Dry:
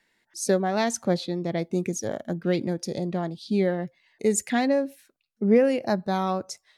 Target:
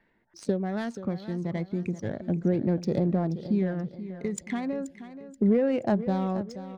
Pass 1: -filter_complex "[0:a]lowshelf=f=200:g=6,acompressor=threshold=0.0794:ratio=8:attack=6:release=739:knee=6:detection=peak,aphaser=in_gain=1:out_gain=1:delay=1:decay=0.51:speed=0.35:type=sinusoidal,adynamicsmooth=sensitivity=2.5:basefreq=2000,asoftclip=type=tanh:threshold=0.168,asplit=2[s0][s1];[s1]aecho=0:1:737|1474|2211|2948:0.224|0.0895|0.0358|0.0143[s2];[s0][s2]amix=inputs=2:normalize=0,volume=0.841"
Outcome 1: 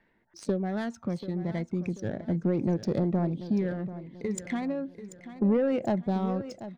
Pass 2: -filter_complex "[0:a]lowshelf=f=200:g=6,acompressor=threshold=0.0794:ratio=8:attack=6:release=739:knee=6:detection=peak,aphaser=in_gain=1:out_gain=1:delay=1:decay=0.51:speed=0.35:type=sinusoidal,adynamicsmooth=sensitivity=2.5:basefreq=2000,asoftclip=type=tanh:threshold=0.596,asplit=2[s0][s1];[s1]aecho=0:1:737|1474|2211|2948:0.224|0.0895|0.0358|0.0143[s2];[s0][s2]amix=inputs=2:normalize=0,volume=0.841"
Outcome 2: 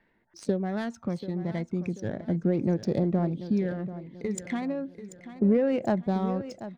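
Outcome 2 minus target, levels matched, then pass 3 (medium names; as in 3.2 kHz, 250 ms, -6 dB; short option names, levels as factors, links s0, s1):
echo 257 ms late
-filter_complex "[0:a]lowshelf=f=200:g=6,acompressor=threshold=0.0794:ratio=8:attack=6:release=739:knee=6:detection=peak,aphaser=in_gain=1:out_gain=1:delay=1:decay=0.51:speed=0.35:type=sinusoidal,adynamicsmooth=sensitivity=2.5:basefreq=2000,asoftclip=type=tanh:threshold=0.596,asplit=2[s0][s1];[s1]aecho=0:1:480|960|1440|1920:0.224|0.0895|0.0358|0.0143[s2];[s0][s2]amix=inputs=2:normalize=0,volume=0.841"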